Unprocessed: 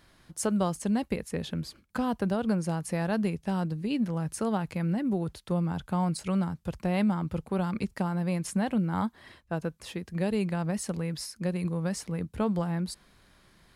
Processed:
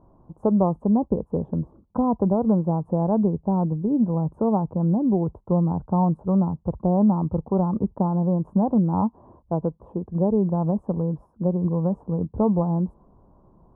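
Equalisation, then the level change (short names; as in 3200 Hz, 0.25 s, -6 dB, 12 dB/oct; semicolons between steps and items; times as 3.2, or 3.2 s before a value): elliptic low-pass 1000 Hz, stop band 50 dB; +8.0 dB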